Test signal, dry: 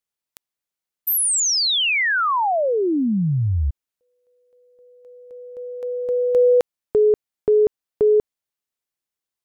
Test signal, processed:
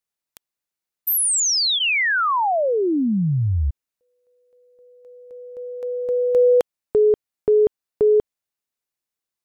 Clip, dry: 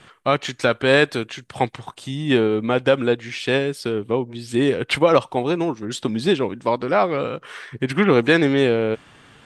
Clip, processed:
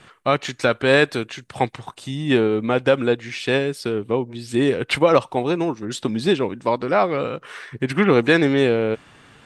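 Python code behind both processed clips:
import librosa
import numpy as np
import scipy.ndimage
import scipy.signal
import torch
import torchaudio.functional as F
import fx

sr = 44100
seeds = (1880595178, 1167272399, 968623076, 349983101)

y = fx.notch(x, sr, hz=3200.0, q=21.0)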